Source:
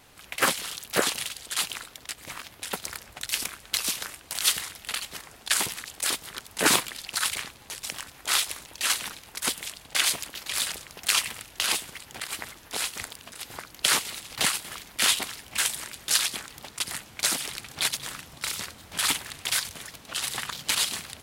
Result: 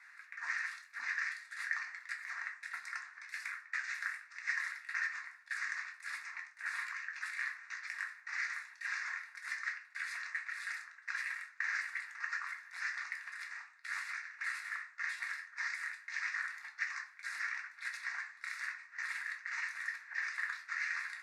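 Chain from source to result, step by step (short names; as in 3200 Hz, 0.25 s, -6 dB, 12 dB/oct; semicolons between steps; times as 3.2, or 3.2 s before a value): trilling pitch shifter -9 st, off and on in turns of 0.328 s; reverse; compressor 16:1, threshold -36 dBFS, peak gain reduction 21 dB; reverse; ladder band-pass 2000 Hz, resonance 65%; fixed phaser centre 1300 Hz, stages 4; shoebox room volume 240 m³, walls furnished, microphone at 1.7 m; gain +11 dB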